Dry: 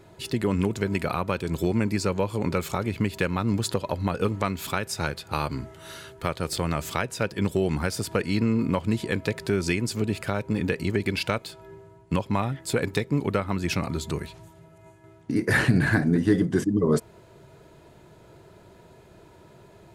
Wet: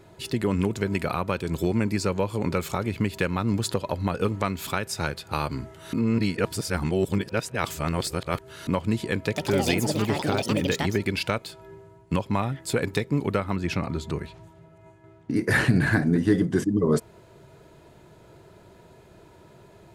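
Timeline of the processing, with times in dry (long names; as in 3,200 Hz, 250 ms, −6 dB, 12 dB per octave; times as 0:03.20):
0:05.93–0:08.67: reverse
0:09.24–0:11.63: delay with pitch and tempo change per echo 113 ms, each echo +6 semitones, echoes 2
0:13.56–0:15.34: low-pass filter 3,200 Hz 6 dB per octave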